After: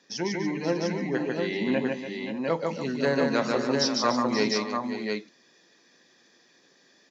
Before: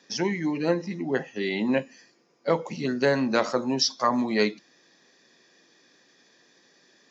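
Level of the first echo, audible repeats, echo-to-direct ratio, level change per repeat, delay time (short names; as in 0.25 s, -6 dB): -3.0 dB, 5, 0.5 dB, no steady repeat, 0.148 s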